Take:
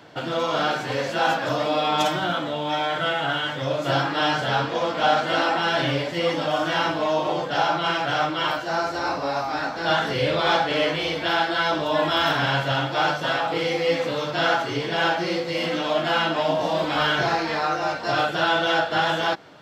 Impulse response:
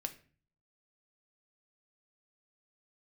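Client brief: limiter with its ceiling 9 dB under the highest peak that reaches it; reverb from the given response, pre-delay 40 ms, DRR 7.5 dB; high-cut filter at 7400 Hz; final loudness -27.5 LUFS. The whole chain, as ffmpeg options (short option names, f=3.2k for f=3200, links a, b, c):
-filter_complex "[0:a]lowpass=7.4k,alimiter=limit=-17dB:level=0:latency=1,asplit=2[a][b];[1:a]atrim=start_sample=2205,adelay=40[c];[b][c]afir=irnorm=-1:irlink=0,volume=-6.5dB[d];[a][d]amix=inputs=2:normalize=0,volume=-2.5dB"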